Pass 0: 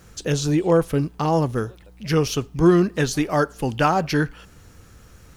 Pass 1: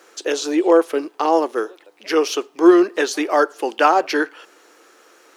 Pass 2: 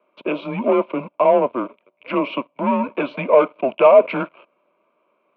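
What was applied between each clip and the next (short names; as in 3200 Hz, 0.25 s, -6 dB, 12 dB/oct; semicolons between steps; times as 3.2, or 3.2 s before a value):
elliptic high-pass 330 Hz, stop band 70 dB; high shelf 7700 Hz -8.5 dB; gain +5.5 dB
sample leveller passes 3; vowel filter a; mistuned SSB -130 Hz 240–3400 Hz; gain +3 dB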